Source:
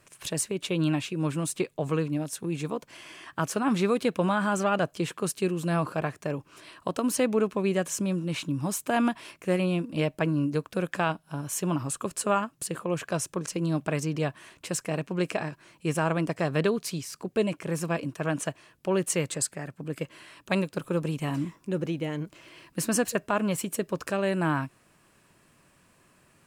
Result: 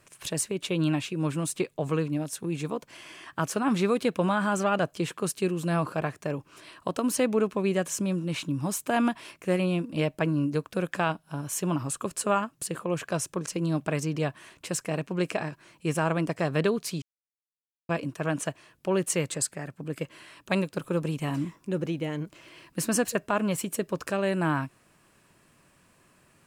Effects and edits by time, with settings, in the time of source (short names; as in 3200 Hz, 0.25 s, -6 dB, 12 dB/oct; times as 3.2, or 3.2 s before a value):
17.02–17.89 mute